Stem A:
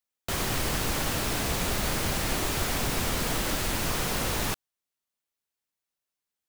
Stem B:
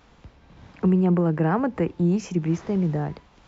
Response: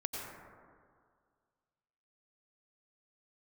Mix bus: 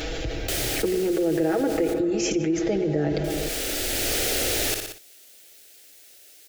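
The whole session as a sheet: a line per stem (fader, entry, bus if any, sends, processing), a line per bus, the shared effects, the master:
-2.0 dB, 0.20 s, muted 1.88–3.24, no send, echo send -16 dB, low shelf 120 Hz -9.5 dB; auto duck -21 dB, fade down 1.75 s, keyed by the second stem
+1.5 dB, 0.00 s, send -7 dB, no echo send, comb 6.2 ms, depth 85%; compressor, threshold -22 dBFS, peak gain reduction 10 dB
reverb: on, RT60 2.0 s, pre-delay 83 ms
echo: feedback echo 60 ms, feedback 24%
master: fixed phaser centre 430 Hz, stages 4; fast leveller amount 70%

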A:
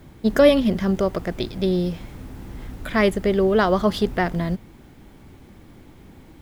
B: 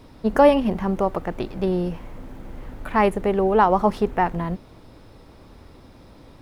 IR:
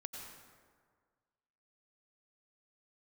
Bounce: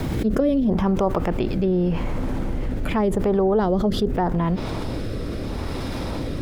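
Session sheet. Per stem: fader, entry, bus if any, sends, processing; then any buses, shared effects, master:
-7.5 dB, 0.00 s, no send, backwards sustainer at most 83 dB/s; auto duck -10 dB, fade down 0.35 s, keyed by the second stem
-2.5 dB, 0.00 s, no send, treble ducked by the level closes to 350 Hz, closed at -12.5 dBFS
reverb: off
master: rotary speaker horn 0.8 Hz; fast leveller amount 70%

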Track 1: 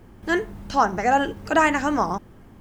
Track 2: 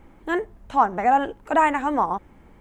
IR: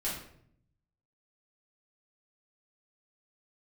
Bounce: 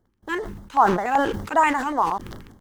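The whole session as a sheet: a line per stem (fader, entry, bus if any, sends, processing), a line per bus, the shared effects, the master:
-4.0 dB, 0.00 s, no send, level quantiser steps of 21 dB; auto duck -11 dB, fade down 0.35 s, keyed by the second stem
+2.5 dB, 0.6 ms, polarity flipped, no send, low shelf 450 Hz -8.5 dB; crossover distortion -47.5 dBFS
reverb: off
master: bell 6100 Hz +2.5 dB 0.23 oct; LFO notch square 5.2 Hz 670–2500 Hz; sustainer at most 61 dB/s

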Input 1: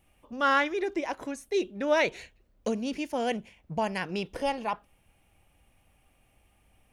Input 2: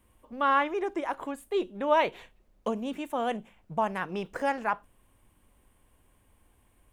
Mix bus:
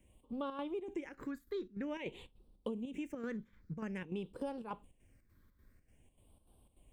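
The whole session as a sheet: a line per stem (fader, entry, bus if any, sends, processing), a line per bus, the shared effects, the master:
0.0 dB, 0.00 s, no send, ladder low-pass 760 Hz, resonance 45%
-2.5 dB, 0.00 s, no send, dry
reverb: off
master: chopper 3.4 Hz, depth 60%, duty 70%; phaser stages 6, 0.5 Hz, lowest notch 730–1900 Hz; compressor 4:1, threshold -38 dBFS, peak gain reduction 10.5 dB

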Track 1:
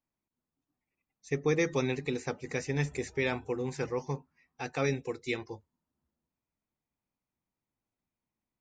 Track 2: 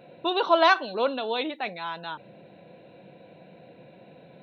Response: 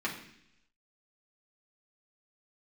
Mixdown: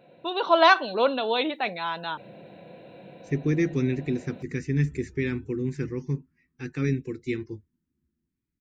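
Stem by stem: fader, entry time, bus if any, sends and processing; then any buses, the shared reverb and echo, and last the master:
-1.0 dB, 2.00 s, no send, EQ curve 350 Hz 0 dB, 670 Hz -30 dB, 1700 Hz -7 dB, 3400 Hz -14 dB
-5.5 dB, 0.00 s, no send, dry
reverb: off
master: AGC gain up to 9 dB

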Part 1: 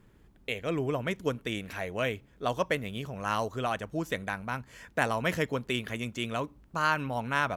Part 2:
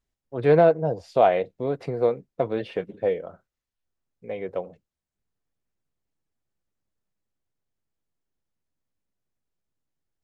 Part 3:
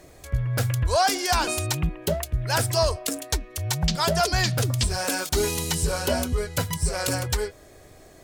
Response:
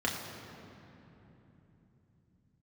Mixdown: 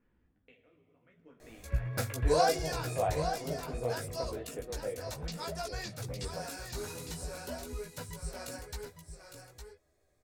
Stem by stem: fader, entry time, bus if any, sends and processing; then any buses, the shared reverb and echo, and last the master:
-13.5 dB, 0.00 s, send -7 dB, no echo send, LPF 3600 Hz; compressor 5:1, threshold -39 dBFS, peak gain reduction 16 dB; tremolo 0.59 Hz, depth 89%
-12.5 dB, 1.80 s, send -16.5 dB, echo send -8 dB, dry
2.31 s -3.5 dB -> 2.82 s -14 dB, 1.40 s, no send, echo send -8 dB, notch 3100 Hz, Q 10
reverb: on, RT60 3.4 s, pre-delay 3 ms
echo: echo 0.858 s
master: chorus voices 4, 1 Hz, delay 16 ms, depth 4.1 ms

